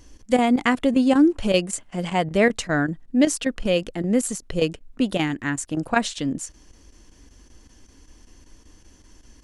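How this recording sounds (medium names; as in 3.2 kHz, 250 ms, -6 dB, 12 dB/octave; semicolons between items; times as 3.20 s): chopped level 5.2 Hz, depth 65%, duty 90%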